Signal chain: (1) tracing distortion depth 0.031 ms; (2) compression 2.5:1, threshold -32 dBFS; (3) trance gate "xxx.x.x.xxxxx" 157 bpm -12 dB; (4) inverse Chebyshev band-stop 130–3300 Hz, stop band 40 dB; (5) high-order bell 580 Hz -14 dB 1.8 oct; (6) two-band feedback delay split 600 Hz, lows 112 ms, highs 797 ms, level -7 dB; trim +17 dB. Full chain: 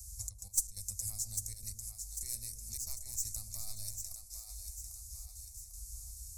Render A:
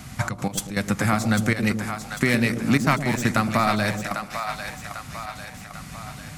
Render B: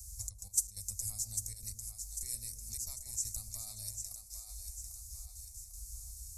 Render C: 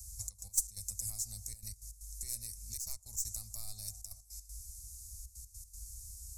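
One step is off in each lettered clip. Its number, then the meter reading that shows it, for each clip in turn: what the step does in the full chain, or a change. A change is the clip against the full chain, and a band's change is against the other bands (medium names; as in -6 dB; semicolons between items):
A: 4, crest factor change -7.5 dB; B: 1, crest factor change -2.0 dB; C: 6, echo-to-direct -5.5 dB to none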